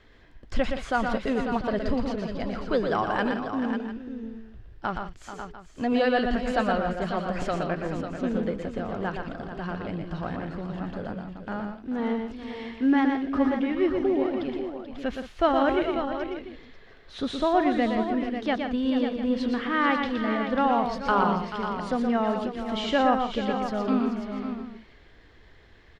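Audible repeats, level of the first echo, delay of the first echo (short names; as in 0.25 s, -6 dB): 5, -5.5 dB, 0.119 s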